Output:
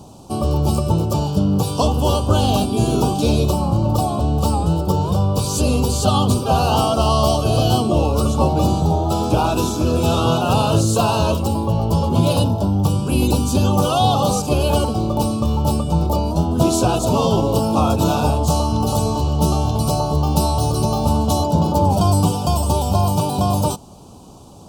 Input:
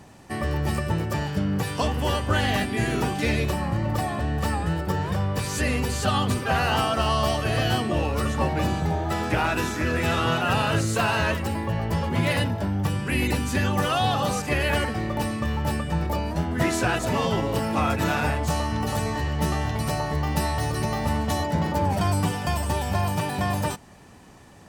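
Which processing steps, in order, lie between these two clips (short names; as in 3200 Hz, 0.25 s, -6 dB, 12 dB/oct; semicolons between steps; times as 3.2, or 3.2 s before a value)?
Butterworth band-stop 1900 Hz, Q 0.86; gain +8 dB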